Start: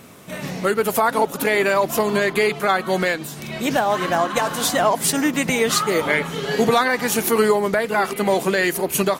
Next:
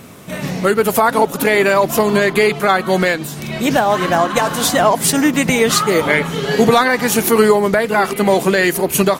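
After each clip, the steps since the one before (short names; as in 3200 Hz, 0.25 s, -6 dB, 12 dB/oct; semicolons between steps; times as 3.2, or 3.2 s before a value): low shelf 220 Hz +4.5 dB; gain +4.5 dB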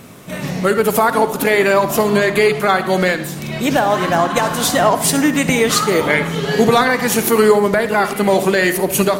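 reverb RT60 0.80 s, pre-delay 54 ms, DRR 10.5 dB; gain -1 dB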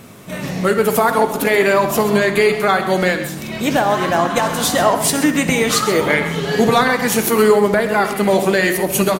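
flange 1 Hz, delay 8.5 ms, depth 1.9 ms, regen -76%; echo 0.131 s -12.5 dB; gain +3.5 dB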